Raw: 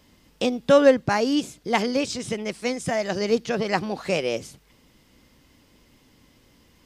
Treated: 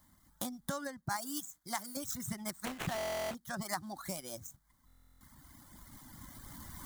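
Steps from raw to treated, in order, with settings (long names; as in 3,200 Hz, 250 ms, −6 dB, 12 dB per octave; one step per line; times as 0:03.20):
running median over 9 samples
camcorder AGC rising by 7.7 dB per second
reverb reduction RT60 1.5 s
0:01.16–0:01.97: low-shelf EQ 500 Hz −11 dB
downward compressor 5 to 1, threshold −24 dBFS, peak gain reduction 12 dB
first-order pre-emphasis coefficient 0.8
phaser with its sweep stopped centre 1,100 Hz, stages 4
0:02.65–0:03.35: sample-rate reduction 5,000 Hz, jitter 20%
buffer that repeats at 0:02.96/0:04.86, samples 1,024, times 14
level +7 dB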